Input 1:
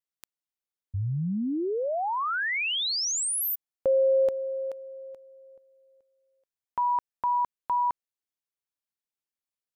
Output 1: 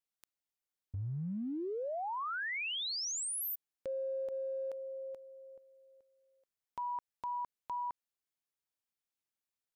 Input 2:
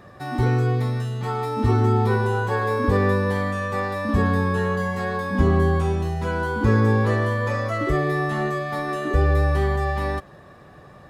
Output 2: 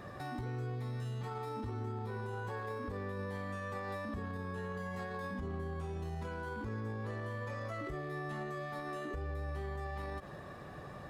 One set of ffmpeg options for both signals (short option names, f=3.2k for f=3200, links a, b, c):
-af "acompressor=threshold=-34dB:ratio=10:attack=0.22:release=52:knee=1:detection=rms,volume=-1.5dB"